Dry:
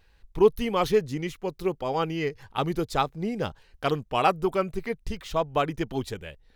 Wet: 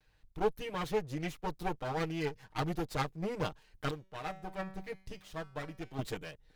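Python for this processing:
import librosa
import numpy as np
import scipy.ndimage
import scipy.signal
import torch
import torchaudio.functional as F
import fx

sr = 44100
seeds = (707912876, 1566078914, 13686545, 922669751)

y = fx.lower_of_two(x, sr, delay_ms=6.5)
y = fx.rider(y, sr, range_db=4, speed_s=0.5)
y = fx.comb_fb(y, sr, f0_hz=190.0, decay_s=0.57, harmonics='all', damping=0.0, mix_pct=60, at=(3.91, 5.99))
y = y * 10.0 ** (-7.5 / 20.0)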